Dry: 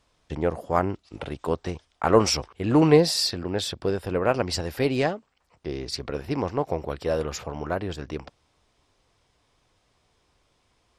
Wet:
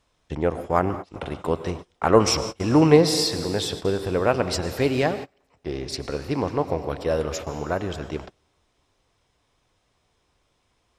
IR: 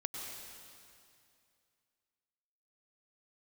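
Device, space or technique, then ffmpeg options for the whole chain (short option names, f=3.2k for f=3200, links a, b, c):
keyed gated reverb: -filter_complex "[0:a]bandreject=f=4.6k:w=15,asplit=3[a][b][c];[1:a]atrim=start_sample=2205[d];[b][d]afir=irnorm=-1:irlink=0[e];[c]apad=whole_len=484398[f];[e][f]sidechaingate=range=-31dB:threshold=-38dB:ratio=16:detection=peak,volume=-4.5dB[g];[a][g]amix=inputs=2:normalize=0,volume=-1.5dB"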